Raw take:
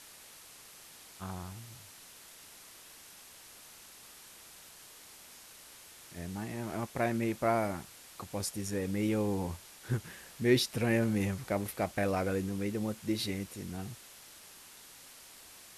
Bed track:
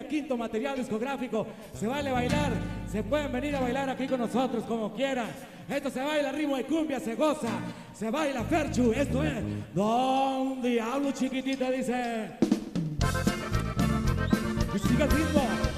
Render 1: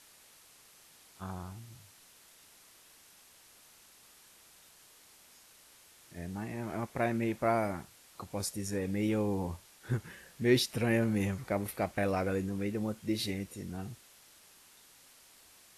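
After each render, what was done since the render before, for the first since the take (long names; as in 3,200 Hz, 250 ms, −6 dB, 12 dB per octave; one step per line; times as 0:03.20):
noise reduction from a noise print 6 dB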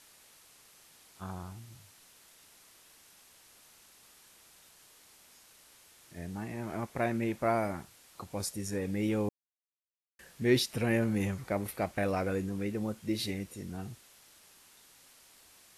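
0:09.29–0:10.19: silence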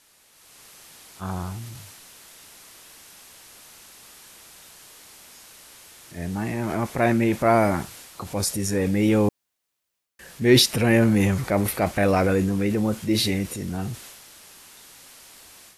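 transient designer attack −3 dB, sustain +5 dB
automatic gain control gain up to 11.5 dB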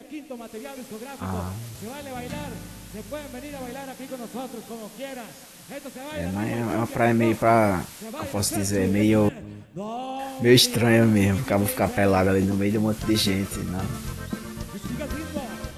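mix in bed track −6.5 dB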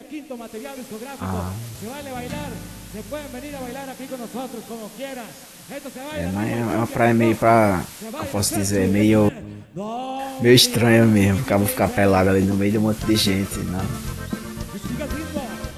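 level +3.5 dB
brickwall limiter −2 dBFS, peak gain reduction 1 dB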